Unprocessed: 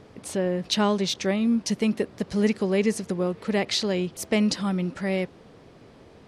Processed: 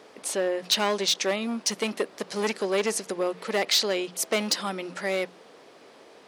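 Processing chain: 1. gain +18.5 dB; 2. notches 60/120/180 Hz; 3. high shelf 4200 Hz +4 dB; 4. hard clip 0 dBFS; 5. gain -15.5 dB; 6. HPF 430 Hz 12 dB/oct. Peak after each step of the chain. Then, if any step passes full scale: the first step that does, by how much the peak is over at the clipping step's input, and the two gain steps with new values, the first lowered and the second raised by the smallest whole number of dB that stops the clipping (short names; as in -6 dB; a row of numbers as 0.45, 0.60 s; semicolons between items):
+8.0, +8.5, +9.0, 0.0, -15.5, -11.0 dBFS; step 1, 9.0 dB; step 1 +9.5 dB, step 5 -6.5 dB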